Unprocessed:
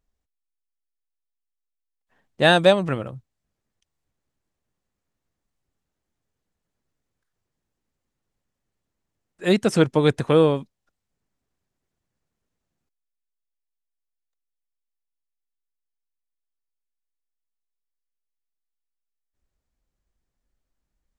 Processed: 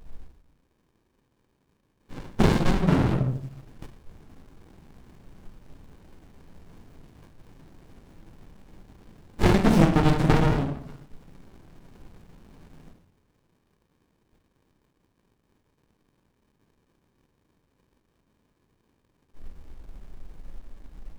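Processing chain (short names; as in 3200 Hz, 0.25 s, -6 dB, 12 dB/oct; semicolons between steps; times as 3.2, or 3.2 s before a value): low shelf 300 Hz -7.5 dB; notches 60/120/180/240/300/360/420/480 Hz; power-law curve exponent 0.7; compressor 12:1, threshold -28 dBFS, peak gain reduction 19 dB; transient shaper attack +5 dB, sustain -5 dB; reverb RT60 0.55 s, pre-delay 5 ms, DRR -6 dB; running maximum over 65 samples; gain +5.5 dB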